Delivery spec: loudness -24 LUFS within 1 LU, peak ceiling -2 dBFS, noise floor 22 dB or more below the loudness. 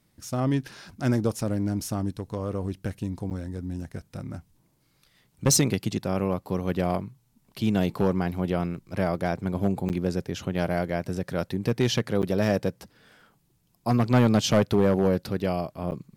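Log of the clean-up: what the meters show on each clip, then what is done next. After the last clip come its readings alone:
clipped samples 0.4%; clipping level -13.5 dBFS; dropouts 4; longest dropout 9.1 ms; loudness -26.5 LUFS; peak level -13.5 dBFS; loudness target -24.0 LUFS
-> clip repair -13.5 dBFS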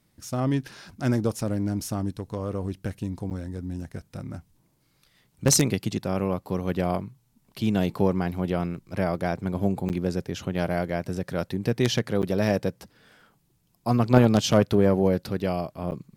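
clipped samples 0.0%; dropouts 4; longest dropout 9.1 ms
-> interpolate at 3.30/9.89/12.22/15.91 s, 9.1 ms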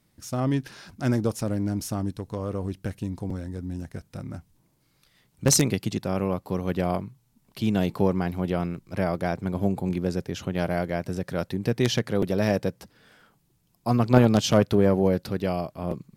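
dropouts 0; loudness -26.0 LUFS; peak level -4.5 dBFS; loudness target -24.0 LUFS
-> trim +2 dB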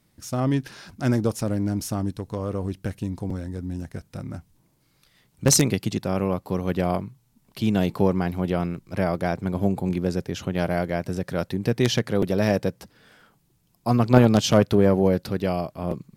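loudness -24.0 LUFS; peak level -2.5 dBFS; noise floor -65 dBFS

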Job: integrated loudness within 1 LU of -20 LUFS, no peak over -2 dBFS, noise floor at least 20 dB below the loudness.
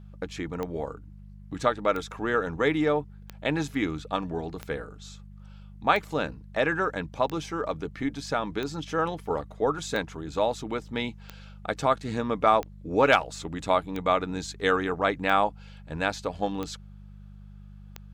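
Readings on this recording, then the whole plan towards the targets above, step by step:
clicks found 14; hum 50 Hz; highest harmonic 200 Hz; hum level -43 dBFS; loudness -28.0 LUFS; peak level -6.5 dBFS; loudness target -20.0 LUFS
-> de-click; de-hum 50 Hz, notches 4; trim +8 dB; peak limiter -2 dBFS

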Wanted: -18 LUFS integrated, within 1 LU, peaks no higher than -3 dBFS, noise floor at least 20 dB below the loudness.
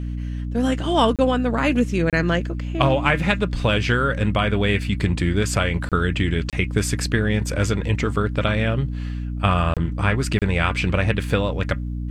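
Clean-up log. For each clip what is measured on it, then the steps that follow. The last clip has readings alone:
dropouts 6; longest dropout 27 ms; hum 60 Hz; highest harmonic 300 Hz; hum level -25 dBFS; loudness -21.5 LUFS; peak level -2.0 dBFS; loudness target -18.0 LUFS
-> interpolate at 1.16/2.10/5.89/6.50/9.74/10.39 s, 27 ms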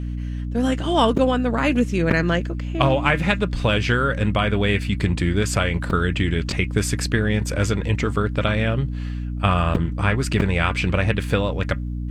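dropouts 0; hum 60 Hz; highest harmonic 300 Hz; hum level -24 dBFS
-> hum notches 60/120/180/240/300 Hz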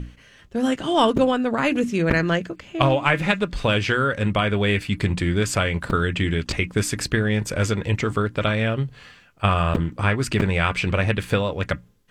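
hum not found; loudness -22.0 LUFS; peak level -3.0 dBFS; loudness target -18.0 LUFS
-> trim +4 dB; peak limiter -3 dBFS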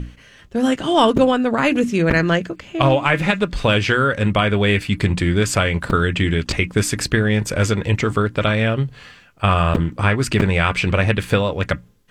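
loudness -18.5 LUFS; peak level -3.0 dBFS; noise floor -47 dBFS

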